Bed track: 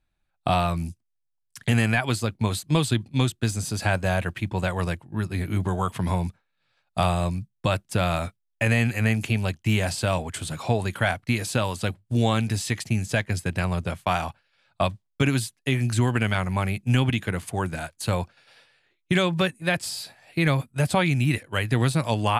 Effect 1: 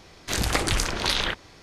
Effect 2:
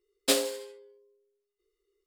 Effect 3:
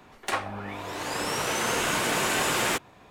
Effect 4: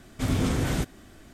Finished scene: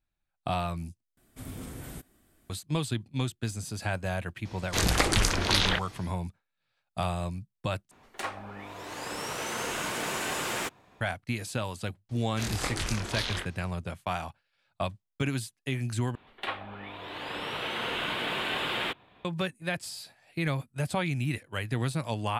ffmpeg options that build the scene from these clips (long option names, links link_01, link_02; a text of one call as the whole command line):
ffmpeg -i bed.wav -i cue0.wav -i cue1.wav -i cue2.wav -i cue3.wav -filter_complex "[1:a]asplit=2[link_01][link_02];[3:a]asplit=2[link_03][link_04];[0:a]volume=-8dB[link_05];[4:a]aexciter=amount=3.3:drive=7:freq=8400[link_06];[link_02]flanger=delay=22.5:depth=5:speed=1.5[link_07];[link_04]highshelf=frequency=4600:width_type=q:width=3:gain=-10.5[link_08];[link_05]asplit=4[link_09][link_10][link_11][link_12];[link_09]atrim=end=1.174[link_13];[link_06]atrim=end=1.33,asetpts=PTS-STARTPTS,volume=-16dB[link_14];[link_10]atrim=start=2.496:end=7.914[link_15];[link_03]atrim=end=3.1,asetpts=PTS-STARTPTS,volume=-6.5dB[link_16];[link_11]atrim=start=11.006:end=16.154[link_17];[link_08]atrim=end=3.1,asetpts=PTS-STARTPTS,volume=-7dB[link_18];[link_12]atrim=start=19.246[link_19];[link_01]atrim=end=1.62,asetpts=PTS-STARTPTS,volume=-0.5dB,afade=type=in:duration=0.004:curve=hsin,afade=type=out:start_time=1.616:duration=0.004:curve=hsin,adelay=196245S[link_20];[link_07]atrim=end=1.62,asetpts=PTS-STARTPTS,volume=-5.5dB,afade=type=in:duration=0.004:curve=hsin,afade=type=out:start_time=1.616:duration=0.004:curve=hsin,adelay=12090[link_21];[link_13][link_14]acrossfade=duration=0.004:curve1=hsin:curve2=hsin[link_22];[link_22][link_15]acrossfade=duration=0.004:curve1=hsin:curve2=hsin[link_23];[link_23][link_16]acrossfade=duration=0.004:curve1=hsin:curve2=hsin[link_24];[link_24][link_17]acrossfade=duration=0.004:curve1=hsin:curve2=hsin[link_25];[link_25][link_18]acrossfade=duration=0.004:curve1=hsin:curve2=hsin[link_26];[link_26][link_19]acrossfade=duration=0.004:curve1=hsin:curve2=hsin[link_27];[link_27][link_20][link_21]amix=inputs=3:normalize=0" out.wav